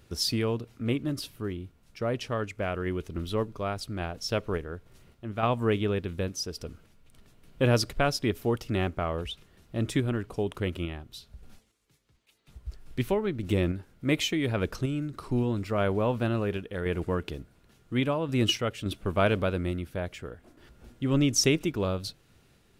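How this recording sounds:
sample-and-hold tremolo 3.5 Hz

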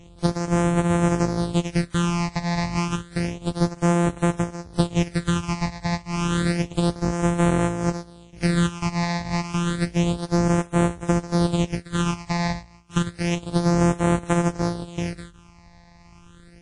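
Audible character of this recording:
a buzz of ramps at a fixed pitch in blocks of 256 samples
phaser sweep stages 8, 0.3 Hz, lowest notch 400–4,700 Hz
WMA

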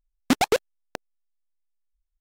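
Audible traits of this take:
background noise floor −78 dBFS
spectral slope −3.5 dB per octave

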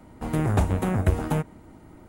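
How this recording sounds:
background noise floor −49 dBFS
spectral slope −7.0 dB per octave

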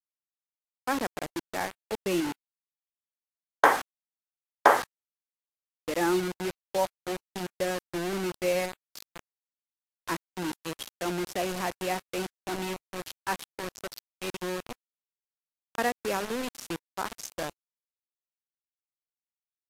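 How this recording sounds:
a quantiser's noise floor 6 bits, dither none
Ogg Vorbis

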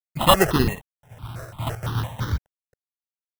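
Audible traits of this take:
a quantiser's noise floor 10 bits, dither none
chopped level 1.2 Hz, depth 60%, duty 10%
aliases and images of a low sample rate 2,300 Hz, jitter 0%
notches that jump at a steady rate 5.9 Hz 860–2,600 Hz

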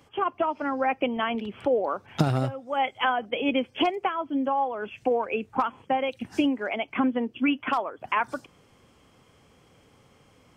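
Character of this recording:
background noise floor −60 dBFS
spectral slope −4.0 dB per octave

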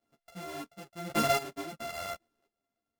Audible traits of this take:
a buzz of ramps at a fixed pitch in blocks of 64 samples
chopped level 0.91 Hz, depth 65%, duty 25%
a shimmering, thickened sound

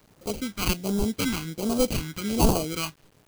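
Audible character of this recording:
aliases and images of a low sample rate 1,800 Hz, jitter 0%
phaser sweep stages 2, 1.3 Hz, lowest notch 520–1,900 Hz
a quantiser's noise floor 10 bits, dither none
AAC

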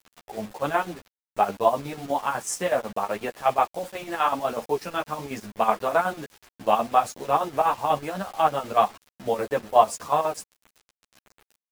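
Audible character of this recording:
chopped level 8.1 Hz, depth 65%, duty 60%
a quantiser's noise floor 8 bits, dither none
a shimmering, thickened sound

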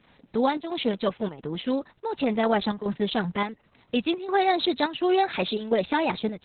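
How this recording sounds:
chopped level 1.4 Hz, depth 60%, duty 80%
Opus

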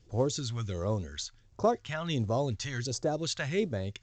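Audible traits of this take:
phaser sweep stages 2, 1.4 Hz, lowest notch 350–2,600 Hz
mu-law

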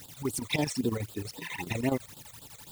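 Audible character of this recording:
a quantiser's noise floor 8 bits, dither triangular
phaser sweep stages 12, 3.8 Hz, lowest notch 270–2,100 Hz
chopped level 12 Hz, depth 65%, duty 70%

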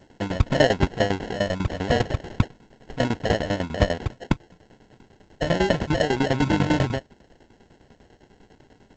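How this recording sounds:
tremolo saw down 10 Hz, depth 90%
aliases and images of a low sample rate 1,200 Hz, jitter 0%
G.722

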